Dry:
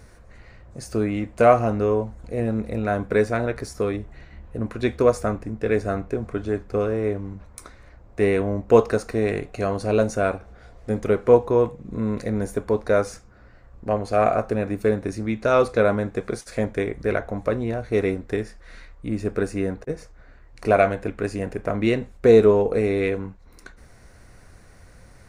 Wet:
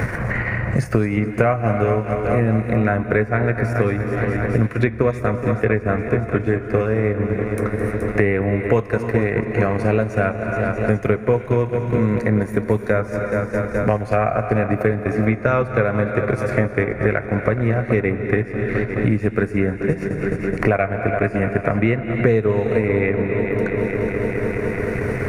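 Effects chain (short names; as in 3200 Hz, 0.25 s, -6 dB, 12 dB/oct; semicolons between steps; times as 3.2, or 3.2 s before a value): on a send: multi-head echo 0.212 s, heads first and second, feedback 68%, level -15.5 dB; on the sum: transient shaper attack +1 dB, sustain -8 dB; in parallel at -2 dB: limiter -11 dBFS, peak gain reduction 9 dB; on the sum: ten-band EQ 125 Hz +10 dB, 2000 Hz +11 dB, 4000 Hz -10 dB, 8000 Hz -8 dB; non-linear reverb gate 0.34 s rising, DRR 11.5 dB; three-band squash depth 100%; gain -4.5 dB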